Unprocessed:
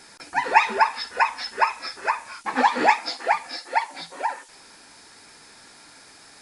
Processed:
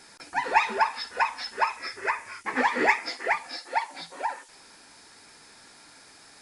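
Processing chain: 1.77–3.36 s: graphic EQ with 31 bands 100 Hz +11 dB, 400 Hz +8 dB, 800 Hz -5 dB, 2 kHz +9 dB, 4 kHz -6 dB; in parallel at -8.5 dB: saturation -19 dBFS, distortion -7 dB; on the sum: trim -6 dB

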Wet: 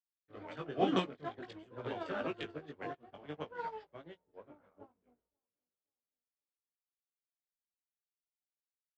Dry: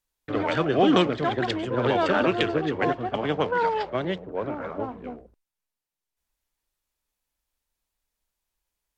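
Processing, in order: chorus 0.51 Hz, delay 18 ms, depth 3.2 ms; feedback delay 534 ms, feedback 41%, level -23 dB; upward expansion 2.5:1, over -41 dBFS; trim -6 dB

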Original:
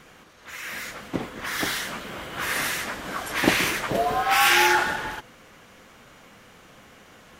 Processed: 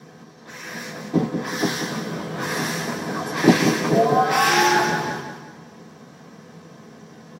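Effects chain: high-pass 100 Hz; feedback delay 185 ms, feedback 39%, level -8 dB; reverberation RT60 0.15 s, pre-delay 3 ms, DRR -2 dB; trim -9 dB

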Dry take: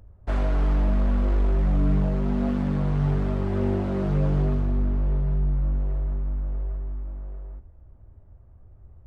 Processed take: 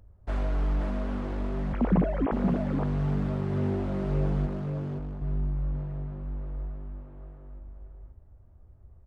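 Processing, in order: 1.73–2.32 s: formants replaced by sine waves; 4.46–5.22 s: valve stage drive 26 dB, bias 0.75; delay 522 ms -5 dB; trim -5 dB

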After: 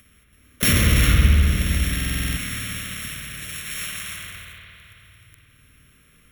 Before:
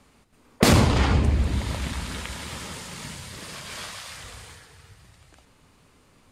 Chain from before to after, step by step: sorted samples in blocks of 8 samples; dynamic bell 5 kHz, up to +5 dB, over -46 dBFS, Q 1.2; waveshaping leveller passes 3; amplifier tone stack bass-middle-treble 5-5-5; upward compressor, threshold -45 dBFS; static phaser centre 2.1 kHz, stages 4; spring tank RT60 3 s, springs 54 ms, chirp 55 ms, DRR -1.5 dB; buffer glitch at 1.95 s, samples 2048, times 8; trim +5.5 dB

